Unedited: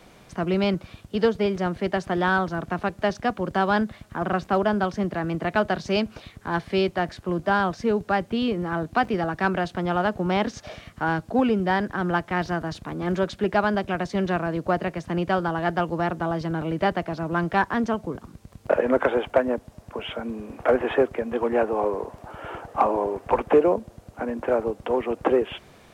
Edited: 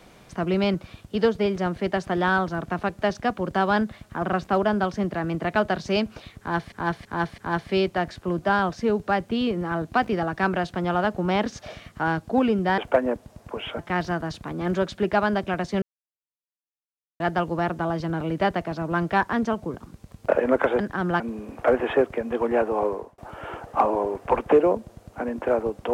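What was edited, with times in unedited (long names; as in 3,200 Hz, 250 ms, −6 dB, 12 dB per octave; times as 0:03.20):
0:06.39–0:06.72: repeat, 4 plays
0:11.79–0:12.20: swap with 0:19.20–0:20.21
0:14.23–0:15.61: silence
0:21.90–0:22.19: fade out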